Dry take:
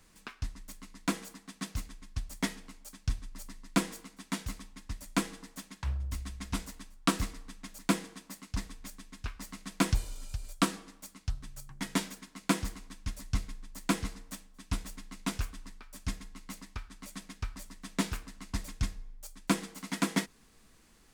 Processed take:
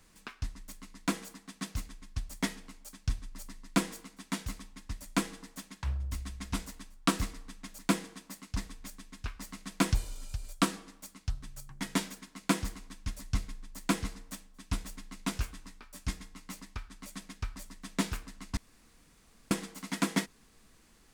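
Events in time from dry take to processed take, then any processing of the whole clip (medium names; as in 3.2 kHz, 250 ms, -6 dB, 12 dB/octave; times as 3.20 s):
15.35–16.60 s: doubling 17 ms -7.5 dB
18.57–19.51 s: room tone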